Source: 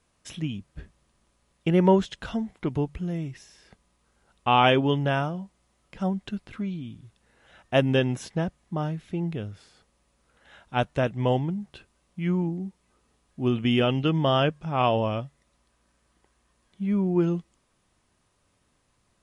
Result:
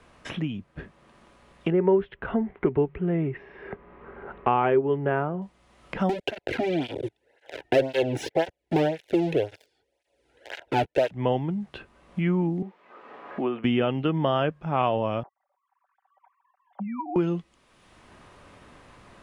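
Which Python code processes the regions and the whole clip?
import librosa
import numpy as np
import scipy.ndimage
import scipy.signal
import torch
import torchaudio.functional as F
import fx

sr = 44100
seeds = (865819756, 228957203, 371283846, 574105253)

y = fx.chain(x, sr, fx.lowpass(hz=2100.0, slope=24),
    fx.peak_eq(hz=400.0, db=14.0, octaves=0.21), at=(1.72, 5.42))
y = fx.chain(y, sr, fx.leveller(passes=5),
    fx.fixed_phaser(hz=480.0, stages=4),
    fx.flanger_cancel(hz=1.9, depth_ms=2.0), at=(6.09, 11.11))
y = fx.chain(y, sr, fx.bandpass_edges(low_hz=430.0, high_hz=2000.0),
    fx.band_squash(depth_pct=40), at=(12.62, 13.64))
y = fx.chain(y, sr, fx.sine_speech(),
    fx.bandpass_q(hz=790.0, q=4.4),
    fx.comb(ms=5.2, depth=0.53), at=(15.23, 17.16))
y = fx.rider(y, sr, range_db=4, speed_s=0.5)
y = fx.bass_treble(y, sr, bass_db=-4, treble_db=-15)
y = fx.band_squash(y, sr, depth_pct=70)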